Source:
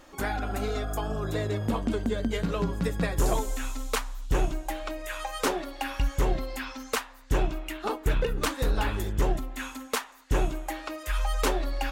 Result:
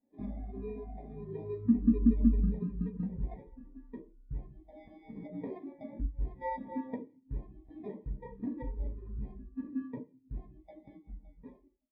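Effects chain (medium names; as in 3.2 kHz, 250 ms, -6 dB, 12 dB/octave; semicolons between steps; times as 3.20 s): fade out at the end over 2.56 s; 4.95–5.85 s: high-pass 42 Hz; 6.41–7.18 s: peaking EQ 570 Hz +13.5 dB 1.1 oct; 9.30–9.96 s: comb 4.7 ms, depth 65%; compression 5:1, threshold -38 dBFS, peak gain reduction 19.5 dB; resampled via 11.025 kHz; sample-and-hold 31×; distance through air 140 m; reverberation RT60 0.80 s, pre-delay 3 ms, DRR -1 dB; spectral contrast expander 2.5:1; trim +8.5 dB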